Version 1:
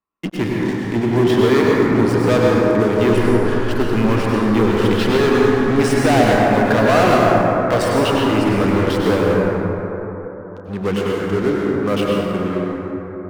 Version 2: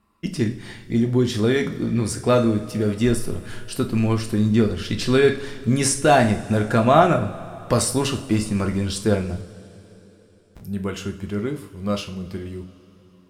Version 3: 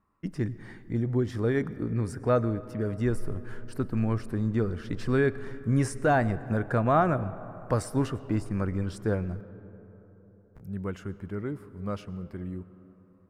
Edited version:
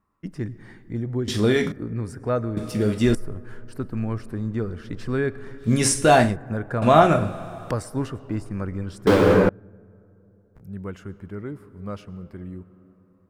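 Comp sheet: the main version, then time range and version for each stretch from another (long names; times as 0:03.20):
3
0:01.28–0:01.72: punch in from 2
0:02.57–0:03.15: punch in from 2
0:05.65–0:06.29: punch in from 2, crossfade 0.16 s
0:06.82–0:07.71: punch in from 2
0:09.07–0:09.49: punch in from 1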